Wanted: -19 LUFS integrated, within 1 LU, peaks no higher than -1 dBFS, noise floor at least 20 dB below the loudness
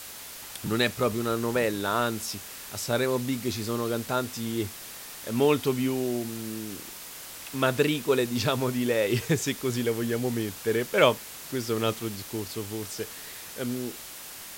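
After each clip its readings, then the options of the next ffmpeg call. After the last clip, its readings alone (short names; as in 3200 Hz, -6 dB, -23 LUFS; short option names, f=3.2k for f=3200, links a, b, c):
noise floor -42 dBFS; noise floor target -48 dBFS; loudness -28.0 LUFS; peak -6.0 dBFS; loudness target -19.0 LUFS
-> -af "afftdn=nr=6:nf=-42"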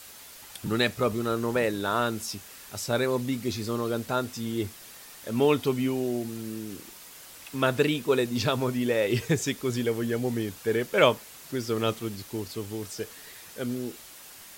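noise floor -47 dBFS; noise floor target -48 dBFS
-> -af "afftdn=nr=6:nf=-47"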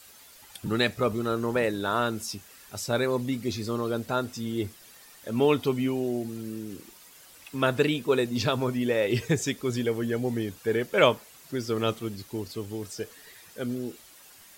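noise floor -52 dBFS; loudness -28.0 LUFS; peak -6.0 dBFS; loudness target -19.0 LUFS
-> -af "volume=9dB,alimiter=limit=-1dB:level=0:latency=1"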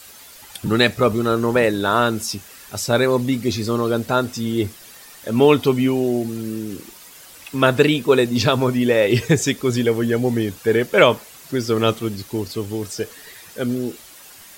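loudness -19.5 LUFS; peak -1.0 dBFS; noise floor -43 dBFS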